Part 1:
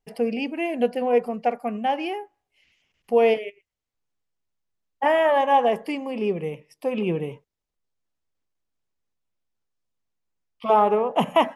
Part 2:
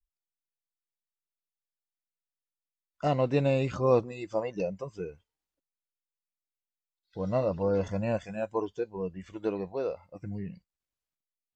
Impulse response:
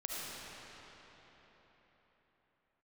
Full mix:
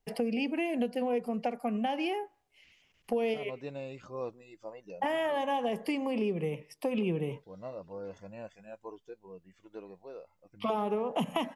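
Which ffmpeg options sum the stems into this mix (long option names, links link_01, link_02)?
-filter_complex "[0:a]acrossover=split=320|3000[link_01][link_02][link_03];[link_02]acompressor=threshold=-32dB:ratio=2.5[link_04];[link_01][link_04][link_03]amix=inputs=3:normalize=0,volume=2dB[link_05];[1:a]lowshelf=frequency=140:gain=-11.5,adelay=300,volume=-13dB[link_06];[link_05][link_06]amix=inputs=2:normalize=0,acompressor=threshold=-29dB:ratio=3"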